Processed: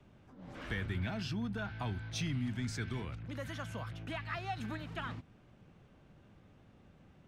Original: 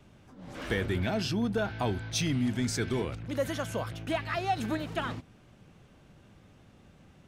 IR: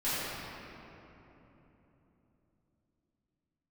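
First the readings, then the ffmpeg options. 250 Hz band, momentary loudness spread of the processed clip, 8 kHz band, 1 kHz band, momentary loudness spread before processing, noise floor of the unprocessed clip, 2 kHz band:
-8.5 dB, 7 LU, -11.5 dB, -9.0 dB, 6 LU, -58 dBFS, -6.0 dB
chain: -filter_complex "[0:a]highshelf=f=4700:g=-11.5,acrossover=split=230|890|2100[s0][s1][s2][s3];[s1]acompressor=threshold=0.00447:ratio=6[s4];[s0][s4][s2][s3]amix=inputs=4:normalize=0,volume=0.631"

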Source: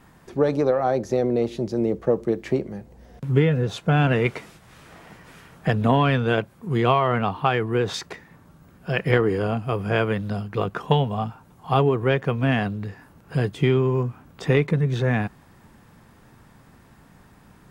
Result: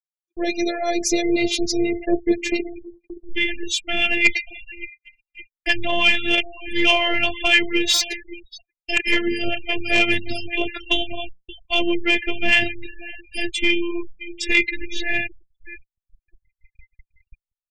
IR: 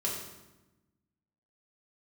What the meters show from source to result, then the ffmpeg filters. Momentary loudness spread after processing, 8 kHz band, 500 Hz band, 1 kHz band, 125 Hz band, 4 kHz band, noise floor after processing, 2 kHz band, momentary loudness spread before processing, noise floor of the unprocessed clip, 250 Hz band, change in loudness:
18 LU, no reading, -4.0 dB, -4.5 dB, -19.5 dB, +14.0 dB, under -85 dBFS, +10.0 dB, 12 LU, -53 dBFS, 0.0 dB, +2.5 dB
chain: -filter_complex "[0:a]equalizer=f=140:w=0.76:g=12.5,dynaudnorm=f=510:g=3:m=3.98,flanger=delay=1.8:depth=9.9:regen=68:speed=0.78:shape=triangular,equalizer=f=125:t=o:w=1:g=5,equalizer=f=250:t=o:w=1:g=-9,equalizer=f=500:t=o:w=1:g=6,equalizer=f=1000:t=o:w=1:g=-6,equalizer=f=2000:t=o:w=1:g=8,equalizer=f=4000:t=o:w=1:g=-4,asplit=2[s0][s1];[s1]adelay=572,lowpass=f=2800:p=1,volume=0.158,asplit=2[s2][s3];[s3]adelay=572,lowpass=f=2800:p=1,volume=0.48,asplit=2[s4][s5];[s5]adelay=572,lowpass=f=2800:p=1,volume=0.48,asplit=2[s6][s7];[s7]adelay=572,lowpass=f=2800:p=1,volume=0.48[s8];[s0][s2][s4][s6][s8]amix=inputs=5:normalize=0,aexciter=amount=13.8:drive=2.6:freq=2200,afftfilt=real='hypot(re,im)*cos(PI*b)':imag='0':win_size=512:overlap=0.75,afftfilt=real='re*gte(hypot(re,im),0.0501)':imag='im*gte(hypot(re,im),0.0501)':win_size=1024:overlap=0.75,aeval=exprs='1.06*sin(PI/2*1.58*val(0)/1.06)':c=same,acrossover=split=770[s9][s10];[s9]aeval=exprs='val(0)*(1-0.5/2+0.5/2*cos(2*PI*6*n/s))':c=same[s11];[s10]aeval=exprs='val(0)*(1-0.5/2-0.5/2*cos(2*PI*6*n/s))':c=same[s12];[s11][s12]amix=inputs=2:normalize=0,agate=range=0.00282:threshold=0.0178:ratio=16:detection=peak,volume=0.75"

